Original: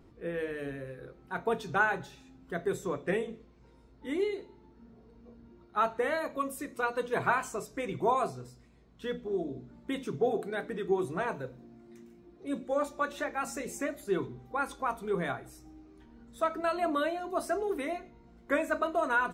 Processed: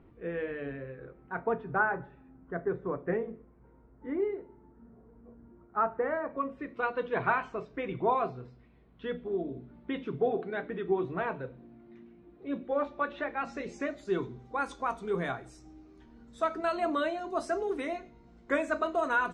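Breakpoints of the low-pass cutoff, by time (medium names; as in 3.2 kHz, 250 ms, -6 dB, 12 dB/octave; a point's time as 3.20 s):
low-pass 24 dB/octave
0.77 s 2.9 kHz
1.77 s 1.7 kHz
6.24 s 1.7 kHz
6.79 s 3.3 kHz
13.24 s 3.3 kHz
14.28 s 7.8 kHz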